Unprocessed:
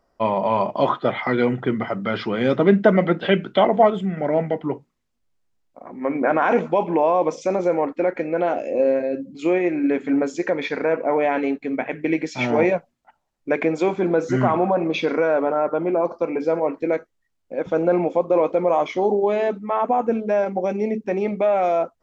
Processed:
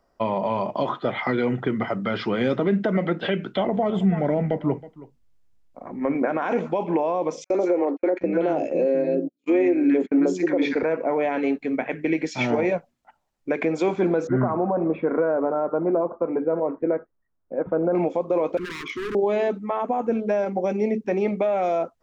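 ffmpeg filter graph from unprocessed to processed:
-filter_complex "[0:a]asettb=1/sr,asplit=3[a][b][c];[a]atrim=end=3.574[d];[b]atrim=start=3.57:end=6.15,asetpts=PTS-STARTPTS,afade=t=in:d=0.004:c=qsin,afade=t=out:st=2.576:d=0.004:c=qsin,lowshelf=f=150:g=11.5,aecho=1:1:321:0.0944,atrim=end_sample=113778[e];[c]atrim=start=6.146[f];[d][e]acrossfade=d=0.004:c1=hsin:c2=qsin[g];[g][f]acrossfade=d=0.004:c1=qsin:c2=hsin,asettb=1/sr,asplit=3[h][i][j];[h]atrim=end=7.444[k];[i]atrim=start=7.44:end=10.83,asetpts=PTS-STARTPTS,afade=t=in:d=0.004:c=qsin,afade=t=out:st=3.386:d=0.004:c=qsin,equalizer=f=310:w=1.2:g=7.5,acrossover=split=250|1100[l][m][n];[m]adelay=40[o];[l]adelay=750[p];[p][o][n]amix=inputs=3:normalize=0,atrim=end_sample=149499,agate=range=-46dB:threshold=-29dB:ratio=16:release=100:detection=peak[q];[j]atrim=start=10.826[r];[k][q]acrossfade=d=0.004:c1=hsin:c2=qsin[s];[s][r]acrossfade=d=0.004:c1=qsin:c2=hsin,asettb=1/sr,asplit=3[t][u][v];[t]atrim=end=14.274[w];[u]atrim=start=14.27:end=17.95,asetpts=PTS-STARTPTS,afade=t=in:d=0.004:c=qsin,afade=t=out:st=3.676:d=0.004:c=qsin,lowpass=f=1.5k:w=0.5412,lowpass=f=1.5k:w=1.3066,bandreject=f=820:w=23[x];[v]atrim=start=17.946[y];[w][x]acrossfade=d=0.004:c1=hsin:c2=qsin[z];[z][y]acrossfade=d=0.004:c1=qsin:c2=hsin,asettb=1/sr,asplit=3[aa][ab][ac];[aa]atrim=end=18.574[ad];[ab]atrim=start=18.57:end=19.15,asetpts=PTS-STARTPTS,afade=t=in:d=0.004:c=qsin,afade=t=out:st=0.576:d=0.004:c=qsin,bass=f=250:g=-3,treble=f=4k:g=-4,volume=24dB,asoftclip=hard,volume=-24dB,asuperstop=centerf=660:order=8:qfactor=1[ae];[ac]atrim=start=19.146[af];[ad][ae]acrossfade=d=0.004:c1=hsin:c2=qsin[ag];[ag][af]acrossfade=d=0.004:c1=qsin:c2=hsin,alimiter=limit=-12dB:level=0:latency=1:release=118,acrossover=split=490|3000[ah][ai][aj];[ai]acompressor=threshold=-24dB:ratio=6[ak];[ah][ak][aj]amix=inputs=3:normalize=0"

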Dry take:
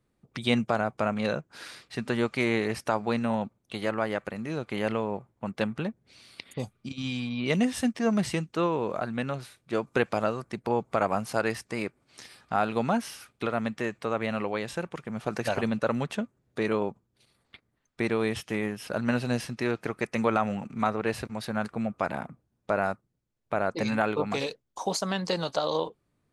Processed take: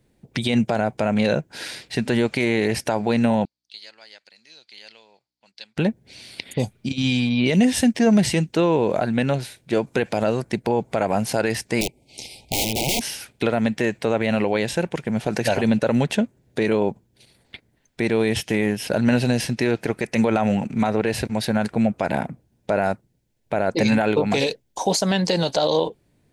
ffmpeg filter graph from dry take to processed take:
-filter_complex "[0:a]asettb=1/sr,asplit=3[a][b][c];[a]atrim=end=3.454[d];[b]atrim=start=3.45:end=5.77,asetpts=PTS-STARTPTS,afade=t=in:d=0.004:c=qsin,afade=t=out:st=2.316:d=0.004:c=qsin,aeval=exprs='val(0)+0.00141*(sin(2*PI*60*n/s)+sin(2*PI*2*60*n/s)/2+sin(2*PI*3*60*n/s)/3+sin(2*PI*4*60*n/s)/4+sin(2*PI*5*60*n/s)/5)':c=same,bandpass=f=4.6k:t=q:w=6.3[e];[c]atrim=start=5.766[f];[d][e]acrossfade=d=0.004:c1=hsin:c2=qsin[g];[g][f]acrossfade=d=0.004:c1=qsin:c2=hsin,asettb=1/sr,asplit=3[h][i][j];[h]atrim=end=11.814[k];[i]atrim=start=11.81:end=13.01,asetpts=PTS-STARTPTS,afade=t=in:d=0.004:c=qsin,afade=t=out:st=1.196:d=0.004:c=qsin,asubboost=boost=10:cutoff=92,aeval=exprs='(mod(22.4*val(0)+1,2)-1)/22.4':c=same,asuperstop=centerf=1400:order=12:qfactor=1.1[l];[j]atrim=start=13.006[m];[k][l]acrossfade=d=0.004:c1=hsin:c2=qsin[n];[n][m]acrossfade=d=0.004:c1=qsin:c2=hsin,equalizer=f=1.2k:t=o:w=0.35:g=-14.5,alimiter=level_in=20dB:limit=-1dB:release=50:level=0:latency=1,volume=-8.5dB"

